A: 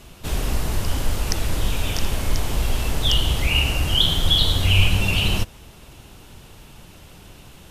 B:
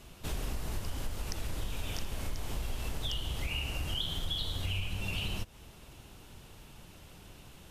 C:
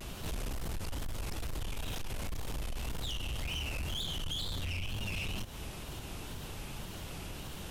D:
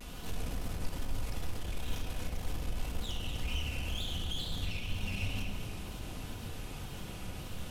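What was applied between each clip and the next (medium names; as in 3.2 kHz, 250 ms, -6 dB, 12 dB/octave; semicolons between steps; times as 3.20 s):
compression, threshold -23 dBFS, peak gain reduction 13.5 dB; trim -8 dB
saturation -35 dBFS, distortion -11 dB; wow and flutter 120 cents; peak limiter -42.5 dBFS, peak gain reduction 8.5 dB; trim +10 dB
echo whose repeats swap between lows and highs 121 ms, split 850 Hz, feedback 56%, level -4 dB; simulated room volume 2600 m³, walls mixed, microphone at 1.9 m; trim -4.5 dB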